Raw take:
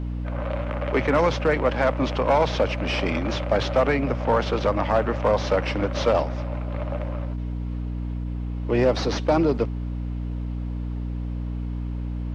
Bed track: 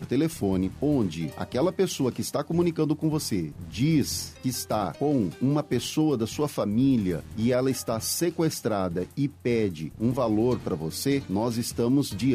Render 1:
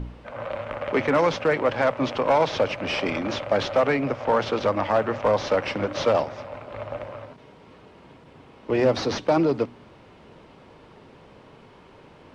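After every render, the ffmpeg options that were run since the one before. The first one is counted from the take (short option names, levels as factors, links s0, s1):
-af "bandreject=f=60:t=h:w=4,bandreject=f=120:t=h:w=4,bandreject=f=180:t=h:w=4,bandreject=f=240:t=h:w=4,bandreject=f=300:t=h:w=4"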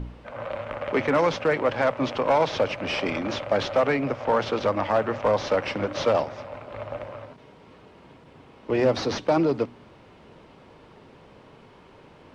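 -af "volume=0.891"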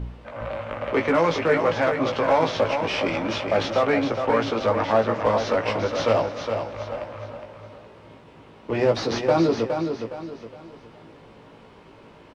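-filter_complex "[0:a]asplit=2[s0][s1];[s1]adelay=18,volume=0.562[s2];[s0][s2]amix=inputs=2:normalize=0,asplit=2[s3][s4];[s4]aecho=0:1:414|828|1242|1656:0.473|0.166|0.058|0.0203[s5];[s3][s5]amix=inputs=2:normalize=0"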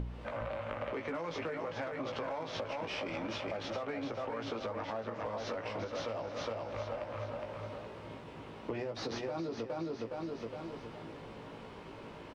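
-af "alimiter=limit=0.119:level=0:latency=1:release=233,acompressor=threshold=0.0158:ratio=6"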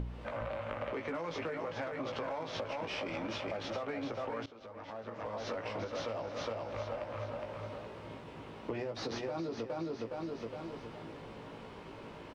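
-filter_complex "[0:a]asplit=2[s0][s1];[s0]atrim=end=4.46,asetpts=PTS-STARTPTS,afade=t=out:st=4.456:d=0.004:c=hsin:silence=0.0944061[s2];[s1]atrim=start=4.46,asetpts=PTS-STARTPTS,afade=t=in:d=1.06:silence=0.0944061[s3];[s2][s3]concat=n=2:v=0:a=1"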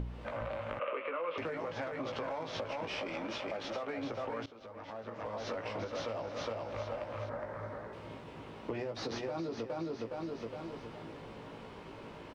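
-filter_complex "[0:a]asettb=1/sr,asplit=3[s0][s1][s2];[s0]atrim=end=0.794[s3];[s1]atrim=start=0.79:end=1.38,asetpts=PTS-STARTPTS,afade=t=in:d=0.004:c=qsin,afade=t=out:st=0.586:d=0.004:c=qsin,highpass=480,equalizer=f=520:t=q:w=4:g=8,equalizer=f=800:t=q:w=4:g=-9,equalizer=f=1200:t=q:w=4:g=9,equalizer=f=1800:t=q:w=4:g=-4,equalizer=f=2700:t=q:w=4:g=10,lowpass=f=2900:w=0.5412,lowpass=f=2900:w=1.3066[s4];[s2]atrim=start=1.376[s5];[s3][s4]acrossfade=d=0.004:c1=hsin:c2=qsin[s6];[s6][s5]acrossfade=d=0.004:c1=qsin:c2=hsin,asettb=1/sr,asplit=3[s7][s8][s9];[s7]atrim=end=3.034[s10];[s8]atrim=start=3.03:end=3.98,asetpts=PTS-STARTPTS,afade=t=in:d=0.004:c=qsin,afade=t=out:st=0.946:d=0.004:c=qsin,equalizer=f=86:t=o:w=1.4:g=-10[s11];[s9]atrim=start=3.976[s12];[s10][s11]acrossfade=d=0.004:c1=hsin:c2=qsin[s13];[s13][s12]acrossfade=d=0.004:c1=qsin:c2=hsin,asettb=1/sr,asplit=3[s14][s15][s16];[s14]atrim=end=7.294[s17];[s15]atrim=start=7.29:end=7.93,asetpts=PTS-STARTPTS,afade=t=in:d=0.004:c=qsin,afade=t=out:st=0.636:d=0.004:c=qsin,highshelf=f=2200:t=q:w=3:g=-6.5[s18];[s16]atrim=start=7.926[s19];[s17][s18]acrossfade=d=0.004:c1=hsin:c2=qsin[s20];[s20][s19]acrossfade=d=0.004:c1=qsin:c2=hsin"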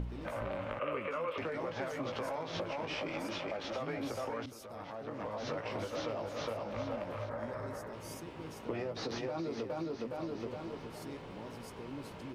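-filter_complex "[1:a]volume=0.0708[s0];[0:a][s0]amix=inputs=2:normalize=0"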